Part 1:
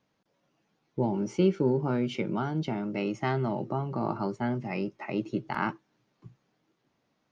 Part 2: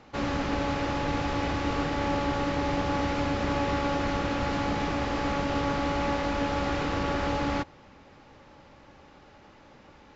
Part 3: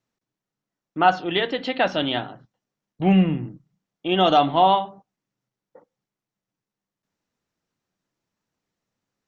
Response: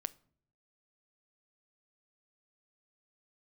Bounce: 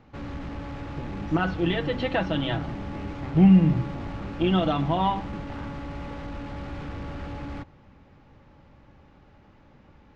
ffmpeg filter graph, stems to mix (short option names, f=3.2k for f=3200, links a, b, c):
-filter_complex "[0:a]acompressor=threshold=-36dB:ratio=6,volume=-5.5dB[a];[1:a]asoftclip=type=tanh:threshold=-31.5dB,volume=-5.5dB[b];[2:a]aecho=1:1:6.1:0.65,alimiter=limit=-12dB:level=0:latency=1:release=317,adelay=350,volume=-3.5dB[c];[a][b][c]amix=inputs=3:normalize=0,bass=f=250:g=10,treble=f=4k:g=-8"